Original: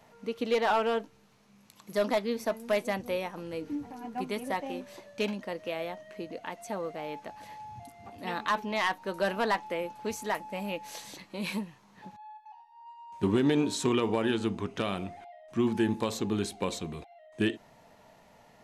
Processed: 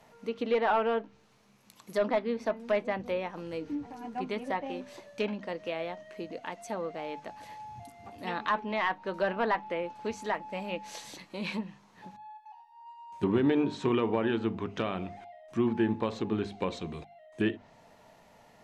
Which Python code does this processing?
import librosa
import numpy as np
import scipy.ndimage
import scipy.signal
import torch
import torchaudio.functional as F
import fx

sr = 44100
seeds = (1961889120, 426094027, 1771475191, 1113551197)

y = fx.env_lowpass_down(x, sr, base_hz=2500.0, full_db=-27.0)
y = fx.hum_notches(y, sr, base_hz=50, count=5)